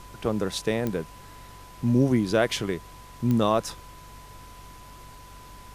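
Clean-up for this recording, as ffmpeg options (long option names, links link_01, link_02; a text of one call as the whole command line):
ffmpeg -i in.wav -af "adeclick=threshold=4,bandreject=frequency=48.3:width_type=h:width=4,bandreject=frequency=96.6:width_type=h:width=4,bandreject=frequency=144.9:width_type=h:width=4,bandreject=frequency=1000:width=30,afftdn=noise_reduction=25:noise_floor=-46" out.wav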